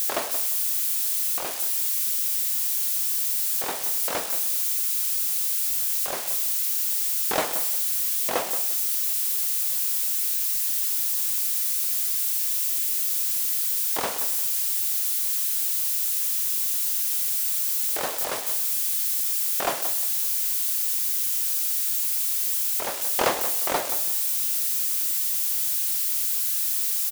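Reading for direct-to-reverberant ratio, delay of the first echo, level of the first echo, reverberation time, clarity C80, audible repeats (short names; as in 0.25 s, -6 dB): none, 0.176 s, -11.5 dB, none, none, 2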